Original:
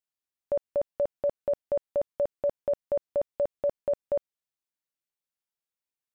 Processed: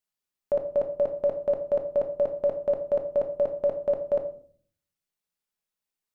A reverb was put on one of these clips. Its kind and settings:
rectangular room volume 480 cubic metres, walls furnished, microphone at 1.4 metres
level +2 dB

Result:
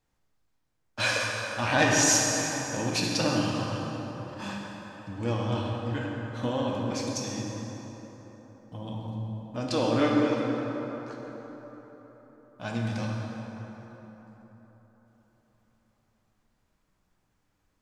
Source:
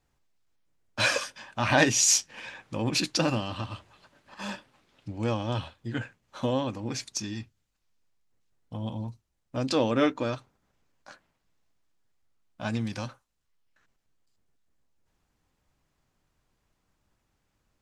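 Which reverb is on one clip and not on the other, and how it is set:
dense smooth reverb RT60 4.4 s, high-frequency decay 0.5×, DRR −2.5 dB
level −3.5 dB

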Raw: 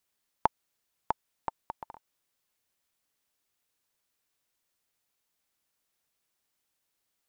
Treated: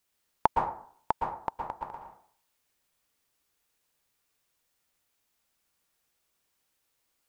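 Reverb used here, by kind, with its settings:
dense smooth reverb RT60 0.53 s, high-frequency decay 0.55×, pre-delay 105 ms, DRR 1.5 dB
level +2 dB

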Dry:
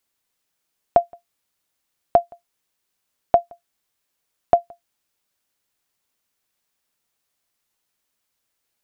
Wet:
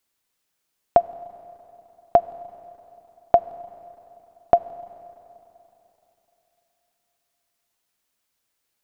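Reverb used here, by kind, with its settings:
four-comb reverb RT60 3.3 s, combs from 33 ms, DRR 16.5 dB

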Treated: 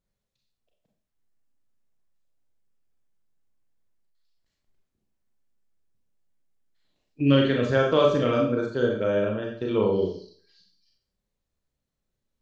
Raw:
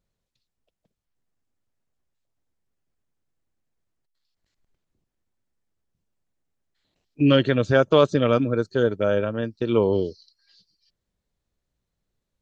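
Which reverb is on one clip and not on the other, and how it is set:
four-comb reverb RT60 0.49 s, combs from 29 ms, DRR −0.5 dB
level −5.5 dB

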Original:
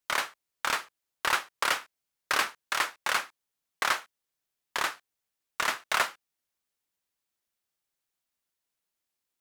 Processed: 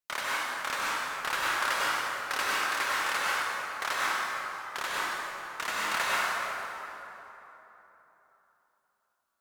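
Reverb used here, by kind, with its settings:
dense smooth reverb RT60 3.6 s, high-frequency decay 0.55×, pre-delay 85 ms, DRR −7 dB
level −6.5 dB

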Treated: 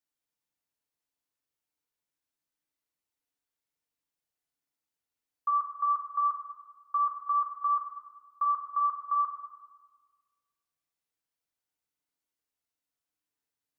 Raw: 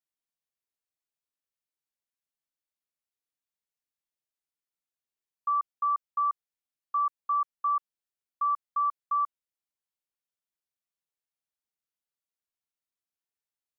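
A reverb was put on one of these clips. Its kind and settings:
feedback delay network reverb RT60 1.4 s, low-frequency decay 1.45×, high-frequency decay 0.45×, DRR −0.5 dB

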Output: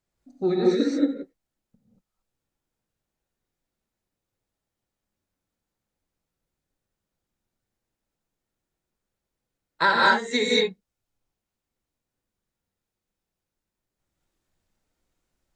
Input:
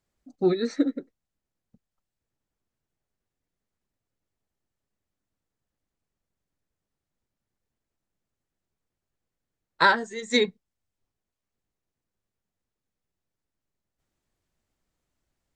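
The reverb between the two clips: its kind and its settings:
reverb whose tail is shaped and stops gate 250 ms rising, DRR −4.5 dB
level −3 dB

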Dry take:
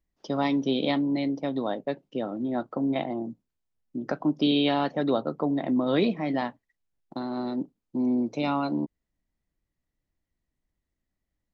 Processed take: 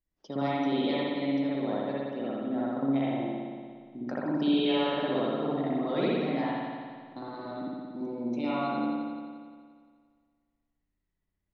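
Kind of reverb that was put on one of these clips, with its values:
spring reverb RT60 1.9 s, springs 58 ms, chirp 30 ms, DRR −7.5 dB
level −10 dB

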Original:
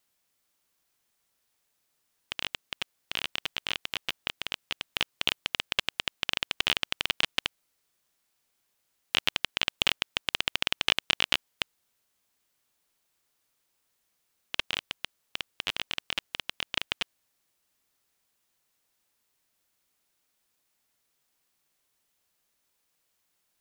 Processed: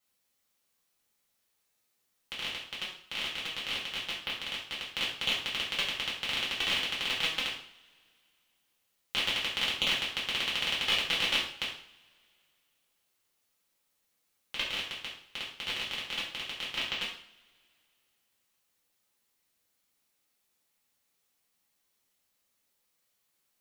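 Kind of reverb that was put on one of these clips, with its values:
coupled-rooms reverb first 0.51 s, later 2.5 s, from −27 dB, DRR −7 dB
level −9 dB

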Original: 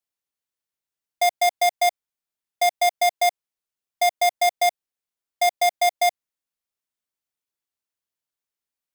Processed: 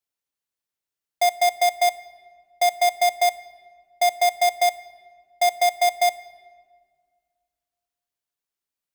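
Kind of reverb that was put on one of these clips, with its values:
rectangular room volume 2,400 cubic metres, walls mixed, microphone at 0.34 metres

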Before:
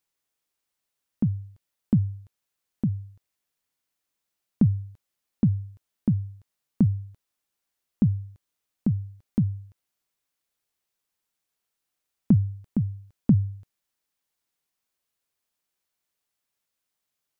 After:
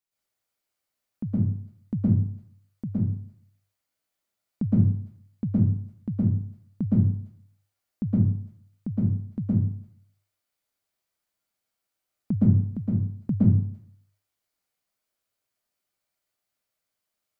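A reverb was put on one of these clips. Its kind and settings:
dense smooth reverb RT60 0.59 s, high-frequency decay 0.6×, pre-delay 105 ms, DRR −9 dB
level −8.5 dB

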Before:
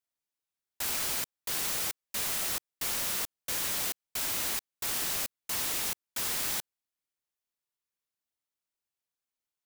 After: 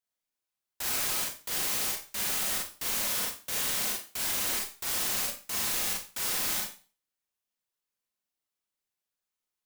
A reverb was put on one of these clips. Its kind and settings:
four-comb reverb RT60 0.36 s, combs from 30 ms, DRR −1.5 dB
level −2 dB

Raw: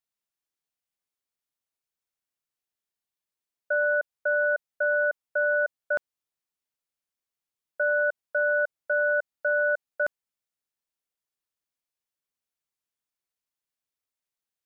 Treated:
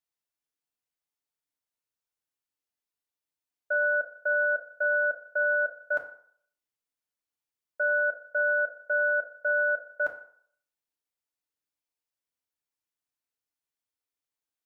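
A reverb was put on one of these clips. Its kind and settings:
feedback delay network reverb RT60 0.59 s, low-frequency decay 0.75×, high-frequency decay 0.65×, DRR 2 dB
level −4.5 dB

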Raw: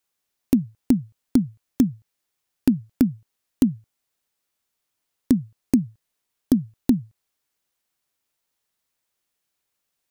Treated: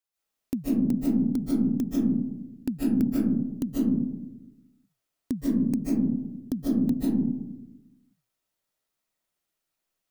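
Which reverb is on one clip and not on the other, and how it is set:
comb and all-pass reverb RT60 0.96 s, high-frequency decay 0.25×, pre-delay 110 ms, DRR −8.5 dB
level −11.5 dB

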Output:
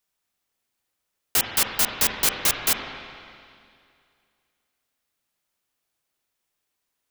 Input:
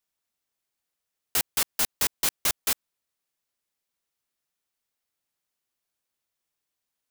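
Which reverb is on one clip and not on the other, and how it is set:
spring reverb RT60 2.3 s, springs 37/42/46 ms, chirp 60 ms, DRR 2.5 dB
level +4 dB

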